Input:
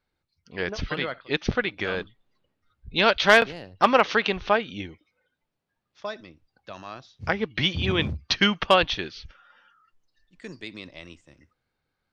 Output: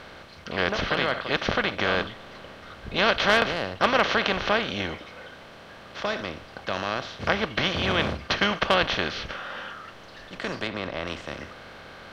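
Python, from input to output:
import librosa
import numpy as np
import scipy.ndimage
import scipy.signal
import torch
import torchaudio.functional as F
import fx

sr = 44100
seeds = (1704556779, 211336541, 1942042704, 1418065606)

y = fx.bin_compress(x, sr, power=0.4)
y = fx.high_shelf(y, sr, hz=3400.0, db=-10.0, at=(10.67, 11.07))
y = y * 10.0 ** (-7.5 / 20.0)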